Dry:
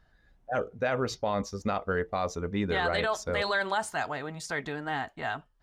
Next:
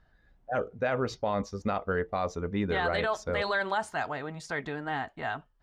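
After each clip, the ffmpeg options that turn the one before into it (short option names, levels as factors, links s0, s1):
-af "lowpass=f=3400:p=1"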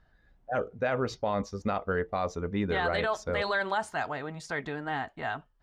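-af anull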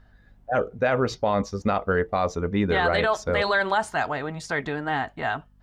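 -af "aeval=exprs='val(0)+0.000708*(sin(2*PI*50*n/s)+sin(2*PI*2*50*n/s)/2+sin(2*PI*3*50*n/s)/3+sin(2*PI*4*50*n/s)/4+sin(2*PI*5*50*n/s)/5)':c=same,volume=2.11"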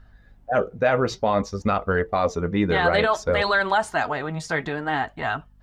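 -af "flanger=delay=0.7:depth=5.7:regen=66:speed=0.56:shape=sinusoidal,volume=2"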